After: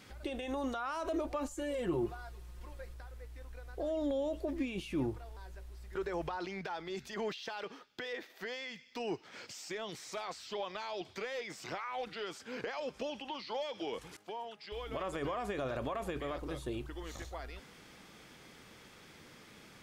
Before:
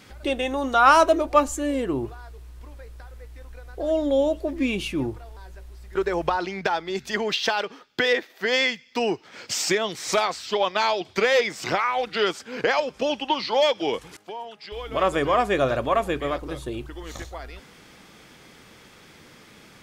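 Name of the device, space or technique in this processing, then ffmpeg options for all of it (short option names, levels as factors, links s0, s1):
de-esser from a sidechain: -filter_complex "[0:a]asettb=1/sr,asplit=3[s0][s1][s2];[s0]atrim=end=1.504[s3];[s1]atrim=start=1.5:end=2.94,asetpts=PTS-STARTPTS,afade=t=in:d=0.004:c=qsin,afade=t=out:st=1.436:d=0.004:c=qsin,aecho=1:1:5.6:0.87,atrim=end_sample=63504[s4];[s2]atrim=start=2.936[s5];[s3][s4]acrossfade=d=0.004:c1=hsin:c2=qsin[s6];[s6][s5]acrossfade=d=0.004:c1=qsin:c2=hsin,asplit=2[s7][s8];[s8]highpass=f=5300:p=1,apad=whole_len=874247[s9];[s7][s9]sidechaincompress=threshold=0.00501:ratio=4:attack=4.4:release=24,volume=0.473"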